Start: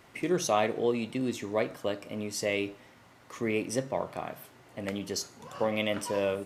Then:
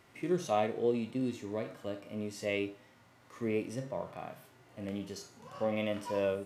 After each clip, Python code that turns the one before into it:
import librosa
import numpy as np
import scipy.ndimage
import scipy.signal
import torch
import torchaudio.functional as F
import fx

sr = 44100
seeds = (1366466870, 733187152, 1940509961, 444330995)

y = fx.hpss(x, sr, part='percussive', gain_db=-14)
y = y * librosa.db_to_amplitude(-1.5)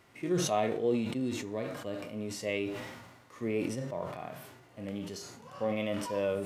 y = fx.sustainer(x, sr, db_per_s=45.0)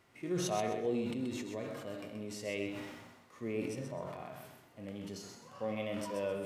y = fx.echo_feedback(x, sr, ms=129, feedback_pct=27, wet_db=-7.0)
y = y * librosa.db_to_amplitude(-5.5)